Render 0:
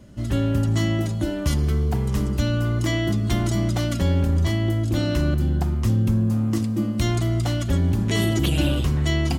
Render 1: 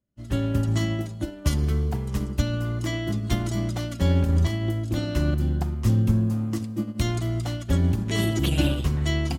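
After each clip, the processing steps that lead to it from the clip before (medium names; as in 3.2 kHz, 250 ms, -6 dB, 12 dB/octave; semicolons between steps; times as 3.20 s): upward expansion 2.5:1, over -42 dBFS; trim +1.5 dB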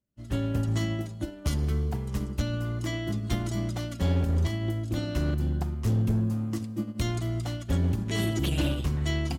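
hard clipper -16.5 dBFS, distortion -18 dB; trim -3.5 dB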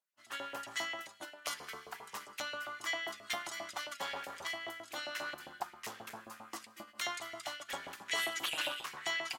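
LFO high-pass saw up 7.5 Hz 740–2300 Hz; trim -2 dB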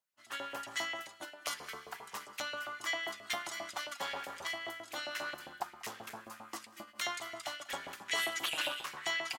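delay 192 ms -22 dB; trim +1 dB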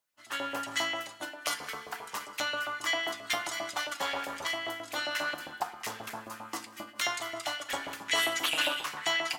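FDN reverb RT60 0.41 s, low-frequency decay 1.1×, high-frequency decay 0.7×, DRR 8.5 dB; trim +5.5 dB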